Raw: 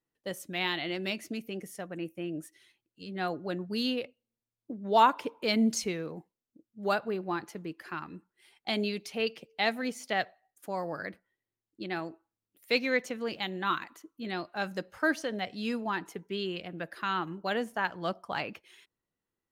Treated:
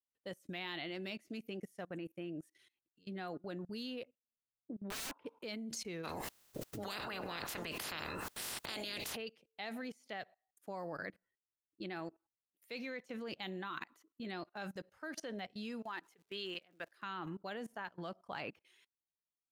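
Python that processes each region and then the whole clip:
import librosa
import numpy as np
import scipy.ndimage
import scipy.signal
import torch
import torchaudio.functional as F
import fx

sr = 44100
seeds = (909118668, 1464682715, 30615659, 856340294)

y = fx.chain(x, sr, fx.air_absorb(metres=450.0),
    fx.overflow_wrap(gain_db=27.0), at=(4.04, 5.26))
y = fx.spec_clip(y, sr, under_db=29, at=(6.03, 9.15), fade=0.02)
y = fx.notch(y, sr, hz=2300.0, q=26.0, at=(6.03, 9.15), fade=0.02)
y = fx.env_flatten(y, sr, amount_pct=70, at=(6.03, 9.15), fade=0.02)
y = fx.highpass(y, sr, hz=770.0, slope=6, at=(15.81, 17.01), fade=0.02)
y = fx.dmg_crackle(y, sr, seeds[0], per_s=380.0, level_db=-52.0, at=(15.81, 17.01), fade=0.02)
y = fx.level_steps(y, sr, step_db=21)
y = fx.upward_expand(y, sr, threshold_db=-52.0, expansion=1.5)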